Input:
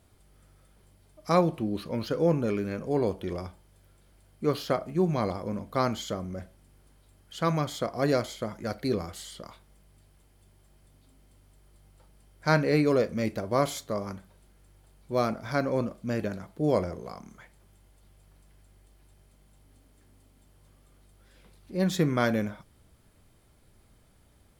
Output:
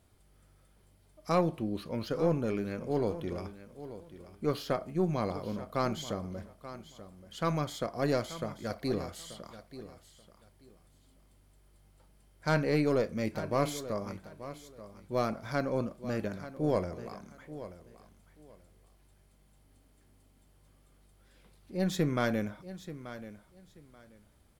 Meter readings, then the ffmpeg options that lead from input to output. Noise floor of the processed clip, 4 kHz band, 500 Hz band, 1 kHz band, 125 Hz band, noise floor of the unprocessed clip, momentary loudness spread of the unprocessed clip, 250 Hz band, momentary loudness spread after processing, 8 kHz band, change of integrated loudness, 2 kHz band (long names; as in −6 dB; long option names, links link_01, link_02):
−64 dBFS, −4.0 dB, −4.0 dB, −4.5 dB, −4.0 dB, −61 dBFS, 15 LU, −4.0 dB, 18 LU, −4.0 dB, −4.5 dB, −4.5 dB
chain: -filter_complex "[0:a]aeval=exprs='(tanh(5.01*val(0)+0.35)-tanh(0.35))/5.01':channel_layout=same,asplit=2[link_01][link_02];[link_02]aecho=0:1:883|1766:0.2|0.0419[link_03];[link_01][link_03]amix=inputs=2:normalize=0,volume=-3dB"